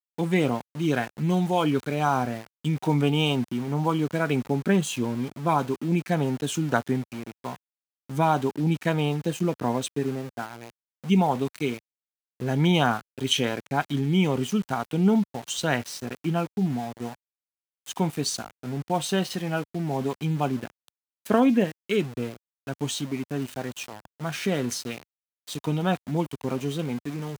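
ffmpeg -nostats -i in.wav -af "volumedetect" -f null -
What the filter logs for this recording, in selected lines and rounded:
mean_volume: -26.5 dB
max_volume: -6.6 dB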